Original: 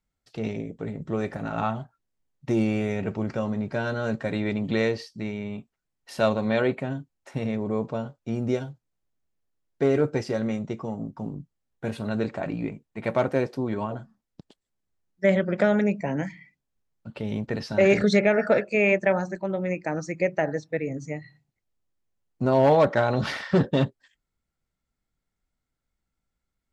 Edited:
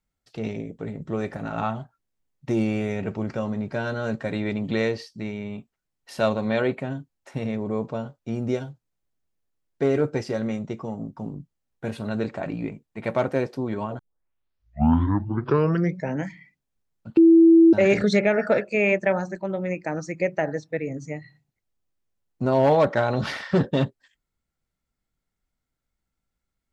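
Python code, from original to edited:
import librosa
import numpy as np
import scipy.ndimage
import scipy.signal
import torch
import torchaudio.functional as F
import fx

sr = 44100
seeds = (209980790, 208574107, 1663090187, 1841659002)

y = fx.edit(x, sr, fx.tape_start(start_s=13.99, length_s=2.2),
    fx.bleep(start_s=17.17, length_s=0.56, hz=330.0, db=-9.5), tone=tone)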